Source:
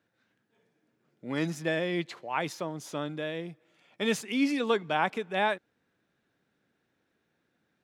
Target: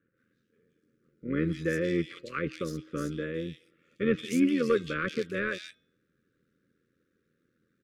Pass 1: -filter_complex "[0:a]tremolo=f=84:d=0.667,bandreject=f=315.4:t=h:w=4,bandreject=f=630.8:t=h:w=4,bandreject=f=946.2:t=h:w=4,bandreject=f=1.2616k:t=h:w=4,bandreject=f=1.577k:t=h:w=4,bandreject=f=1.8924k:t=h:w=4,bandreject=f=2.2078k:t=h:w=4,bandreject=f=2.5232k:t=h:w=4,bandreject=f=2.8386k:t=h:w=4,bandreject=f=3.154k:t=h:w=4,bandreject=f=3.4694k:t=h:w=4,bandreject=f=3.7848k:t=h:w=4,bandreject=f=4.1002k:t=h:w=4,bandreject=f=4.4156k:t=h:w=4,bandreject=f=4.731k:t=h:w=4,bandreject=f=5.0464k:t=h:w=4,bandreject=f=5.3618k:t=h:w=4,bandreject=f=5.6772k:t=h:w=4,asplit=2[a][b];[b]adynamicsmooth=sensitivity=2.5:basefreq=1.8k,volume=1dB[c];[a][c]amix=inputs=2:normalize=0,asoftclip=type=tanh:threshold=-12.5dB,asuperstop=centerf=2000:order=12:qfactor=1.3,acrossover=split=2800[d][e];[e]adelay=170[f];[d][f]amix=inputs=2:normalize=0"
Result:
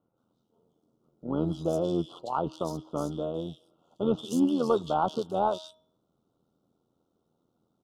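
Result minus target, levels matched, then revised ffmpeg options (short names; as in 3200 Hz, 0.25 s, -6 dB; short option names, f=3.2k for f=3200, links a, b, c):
2000 Hz band -19.0 dB
-filter_complex "[0:a]tremolo=f=84:d=0.667,bandreject=f=315.4:t=h:w=4,bandreject=f=630.8:t=h:w=4,bandreject=f=946.2:t=h:w=4,bandreject=f=1.2616k:t=h:w=4,bandreject=f=1.577k:t=h:w=4,bandreject=f=1.8924k:t=h:w=4,bandreject=f=2.2078k:t=h:w=4,bandreject=f=2.5232k:t=h:w=4,bandreject=f=2.8386k:t=h:w=4,bandreject=f=3.154k:t=h:w=4,bandreject=f=3.4694k:t=h:w=4,bandreject=f=3.7848k:t=h:w=4,bandreject=f=4.1002k:t=h:w=4,bandreject=f=4.4156k:t=h:w=4,bandreject=f=4.731k:t=h:w=4,bandreject=f=5.0464k:t=h:w=4,bandreject=f=5.3618k:t=h:w=4,bandreject=f=5.6772k:t=h:w=4,asplit=2[a][b];[b]adynamicsmooth=sensitivity=2.5:basefreq=1.8k,volume=1dB[c];[a][c]amix=inputs=2:normalize=0,asoftclip=type=tanh:threshold=-12.5dB,asuperstop=centerf=800:order=12:qfactor=1.3,acrossover=split=2800[d][e];[e]adelay=170[f];[d][f]amix=inputs=2:normalize=0"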